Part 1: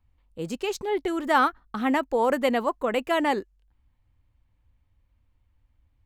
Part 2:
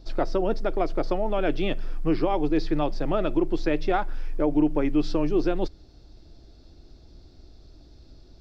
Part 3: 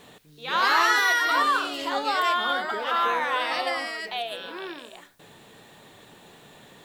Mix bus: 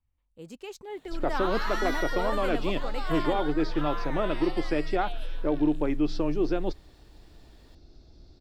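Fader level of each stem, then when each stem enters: -12.0 dB, -3.0 dB, -13.0 dB; 0.00 s, 1.05 s, 0.90 s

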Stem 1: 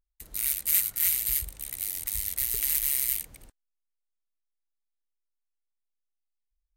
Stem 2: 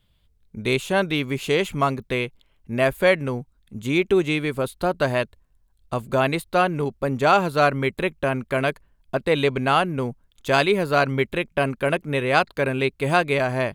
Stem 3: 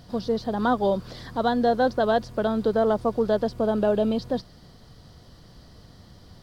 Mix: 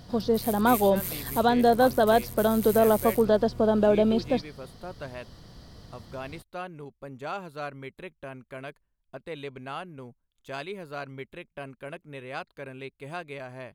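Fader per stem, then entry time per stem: -10.5 dB, -17.5 dB, +1.0 dB; 0.00 s, 0.00 s, 0.00 s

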